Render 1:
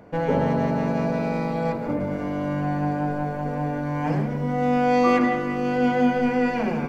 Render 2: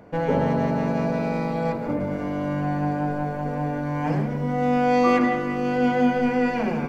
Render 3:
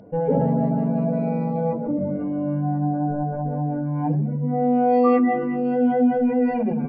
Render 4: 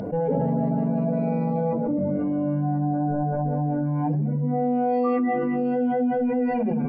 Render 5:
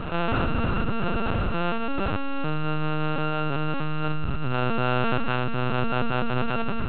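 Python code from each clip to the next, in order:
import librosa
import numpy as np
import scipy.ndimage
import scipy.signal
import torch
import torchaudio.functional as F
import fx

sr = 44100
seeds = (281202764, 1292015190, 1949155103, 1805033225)

y1 = x
y2 = fx.spec_expand(y1, sr, power=2.0)
y2 = fx.band_shelf(y2, sr, hz=3900.0, db=9.0, octaves=1.2)
y2 = F.gain(torch.from_numpy(y2), 2.0).numpy()
y3 = fx.env_flatten(y2, sr, amount_pct=70)
y3 = F.gain(torch.from_numpy(y3), -6.5).numpy()
y4 = np.r_[np.sort(y3[:len(y3) // 32 * 32].reshape(-1, 32), axis=1).ravel(), y3[len(y3) // 32 * 32:]]
y4 = fx.lpc_vocoder(y4, sr, seeds[0], excitation='pitch_kept', order=8)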